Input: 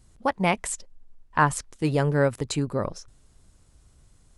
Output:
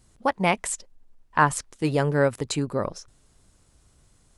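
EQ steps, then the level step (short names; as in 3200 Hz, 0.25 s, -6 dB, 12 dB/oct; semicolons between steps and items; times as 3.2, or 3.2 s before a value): low shelf 130 Hz -6.5 dB; +1.5 dB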